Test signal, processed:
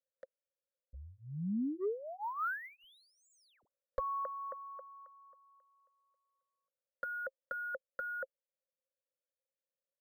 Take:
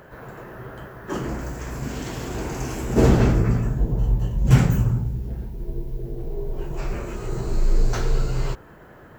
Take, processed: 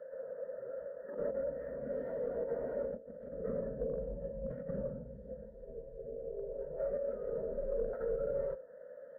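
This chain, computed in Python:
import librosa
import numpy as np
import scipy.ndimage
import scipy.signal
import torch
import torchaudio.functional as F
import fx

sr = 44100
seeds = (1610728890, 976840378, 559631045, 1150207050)

y = fx.vowel_filter(x, sr, vowel='e')
y = fx.band_shelf(y, sr, hz=850.0, db=11.5, octaves=1.7)
y = fx.over_compress(y, sr, threshold_db=-36.0, ratio=-1.0)
y = np.clip(y, -10.0 ** (-29.0 / 20.0), 10.0 ** (-29.0 / 20.0))
y = fx.env_lowpass_down(y, sr, base_hz=1500.0, full_db=-37.5)
y = fx.tilt_eq(y, sr, slope=-2.5)
y = fx.noise_reduce_blind(y, sr, reduce_db=7)
y = fx.fixed_phaser(y, sr, hz=520.0, stages=8)
y = np.interp(np.arange(len(y)), np.arange(len(y))[::3], y[::3])
y = y * 10.0 ** (1.0 / 20.0)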